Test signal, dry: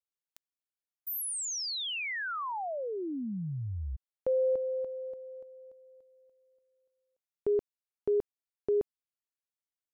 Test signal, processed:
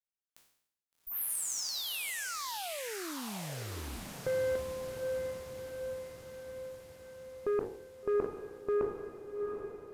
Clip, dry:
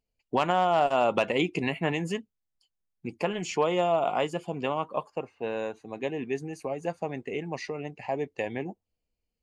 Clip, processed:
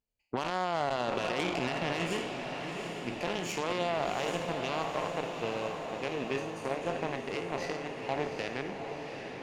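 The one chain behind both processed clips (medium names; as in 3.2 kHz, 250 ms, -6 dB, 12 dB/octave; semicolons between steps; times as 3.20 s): spectral sustain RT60 0.72 s; peak limiter -20.5 dBFS; Chebyshev shaper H 3 -12 dB, 4 -45 dB, 5 -30 dB, 6 -28 dB, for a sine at -20.5 dBFS; on a send: echo that smears into a reverb 763 ms, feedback 63%, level -6 dB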